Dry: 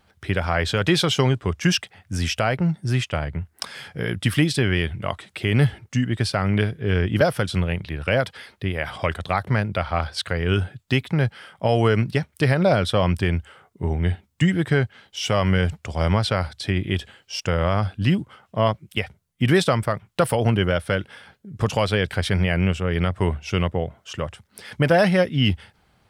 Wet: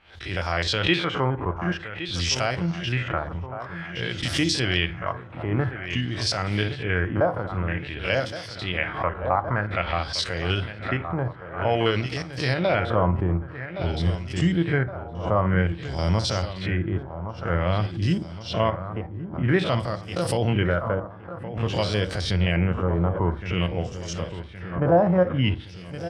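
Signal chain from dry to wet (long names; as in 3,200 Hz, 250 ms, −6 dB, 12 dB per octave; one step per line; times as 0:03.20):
spectrum averaged block by block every 50 ms
parametric band 160 Hz −5 dB 1.9 octaves, from 0:12.91 2,100 Hz
repeating echo 1,117 ms, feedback 58%, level −12 dB
auto-filter low-pass sine 0.51 Hz 970–6,000 Hz
high-shelf EQ 7,400 Hz +11.5 dB
convolution reverb RT60 0.40 s, pre-delay 3 ms, DRR 12 dB
background raised ahead of every attack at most 110 dB per second
level −2.5 dB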